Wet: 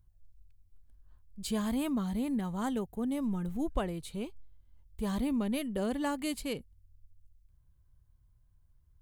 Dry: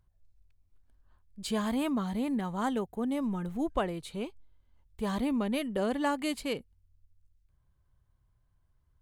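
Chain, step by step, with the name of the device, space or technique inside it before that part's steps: smiley-face EQ (bass shelf 140 Hz +9 dB; peaking EQ 1.1 kHz -3 dB 2.8 oct; treble shelf 8.9 kHz +8 dB); trim -2.5 dB

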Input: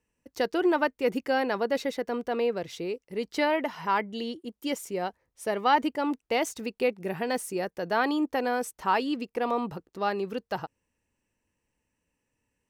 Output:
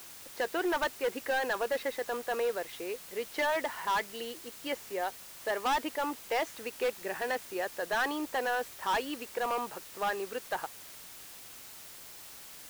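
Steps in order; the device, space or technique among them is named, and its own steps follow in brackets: drive-through speaker (band-pass 500–3000 Hz; peaking EQ 1.7 kHz +6 dB 0.27 oct; hard clipper -25.5 dBFS, distortion -8 dB; white noise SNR 14 dB)

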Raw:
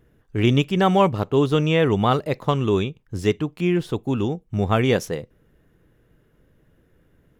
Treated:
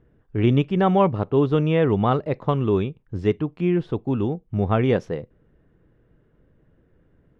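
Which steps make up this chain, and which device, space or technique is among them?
phone in a pocket (low-pass 4 kHz 12 dB/octave; treble shelf 2.1 kHz -10.5 dB)

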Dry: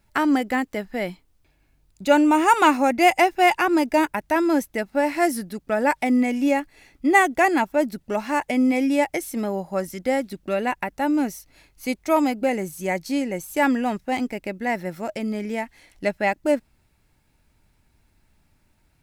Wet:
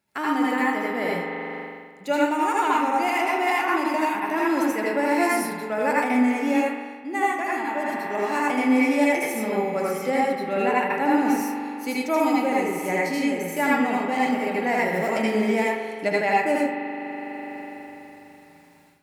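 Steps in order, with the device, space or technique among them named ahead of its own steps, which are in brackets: 10.10–11.25 s: treble shelf 4.4 kHz -5.5 dB; spring tank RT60 3.4 s, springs 41 ms, chirp 80 ms, DRR 4 dB; far laptop microphone (reverberation RT60 0.30 s, pre-delay 73 ms, DRR -4 dB; high-pass 180 Hz 12 dB/octave; level rider gain up to 13.5 dB); trim -8.5 dB

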